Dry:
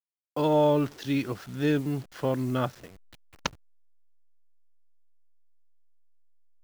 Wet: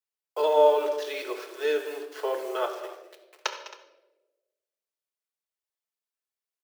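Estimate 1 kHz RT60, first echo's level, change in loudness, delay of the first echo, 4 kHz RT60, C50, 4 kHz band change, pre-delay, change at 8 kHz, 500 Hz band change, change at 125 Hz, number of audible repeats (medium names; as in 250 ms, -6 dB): 0.80 s, -16.5 dB, +1.0 dB, 203 ms, 0.75 s, 7.0 dB, +2.0 dB, 5 ms, +1.5 dB, +3.5 dB, under -40 dB, 2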